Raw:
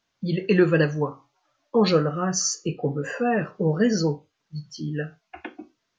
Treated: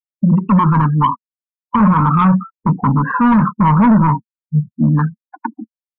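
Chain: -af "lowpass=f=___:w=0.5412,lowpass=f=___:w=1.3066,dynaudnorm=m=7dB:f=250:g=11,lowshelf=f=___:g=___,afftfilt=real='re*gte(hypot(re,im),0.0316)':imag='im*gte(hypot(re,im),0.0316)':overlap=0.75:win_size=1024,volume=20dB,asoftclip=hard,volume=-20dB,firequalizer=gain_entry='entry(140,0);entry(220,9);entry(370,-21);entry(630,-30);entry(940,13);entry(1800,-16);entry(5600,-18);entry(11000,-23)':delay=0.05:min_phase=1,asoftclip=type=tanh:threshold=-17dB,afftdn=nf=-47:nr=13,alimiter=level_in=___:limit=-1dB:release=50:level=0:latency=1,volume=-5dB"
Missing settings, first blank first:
2300, 2300, 110, -7.5, 20.5dB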